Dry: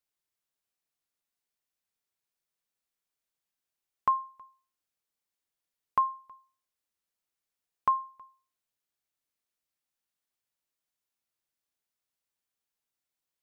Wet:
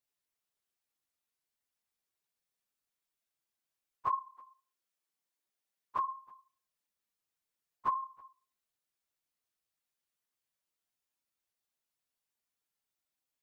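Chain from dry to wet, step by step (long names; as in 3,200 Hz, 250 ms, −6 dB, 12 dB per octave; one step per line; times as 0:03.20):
random phases in long frames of 50 ms
0:04.08–0:06.05: high-pass filter 330 Hz → 110 Hz 12 dB per octave
in parallel at +3 dB: brickwall limiter −24 dBFS, peak gain reduction 8.5 dB
on the sum: level −9 dB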